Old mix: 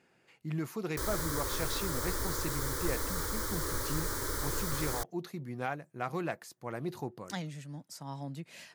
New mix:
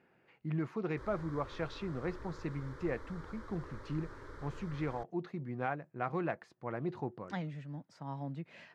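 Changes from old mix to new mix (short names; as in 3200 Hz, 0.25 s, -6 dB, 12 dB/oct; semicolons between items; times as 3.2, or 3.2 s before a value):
background -12.0 dB; master: add LPF 2200 Hz 12 dB/oct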